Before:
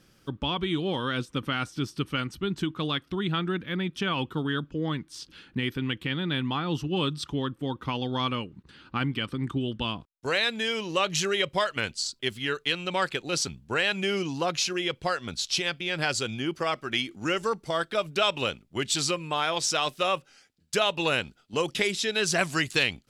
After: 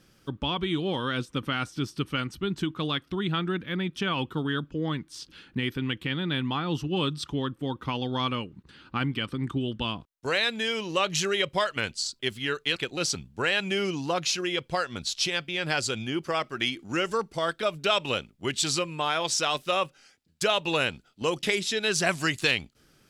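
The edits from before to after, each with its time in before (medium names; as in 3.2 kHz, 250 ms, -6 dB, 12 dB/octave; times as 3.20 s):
12.76–13.08 s: delete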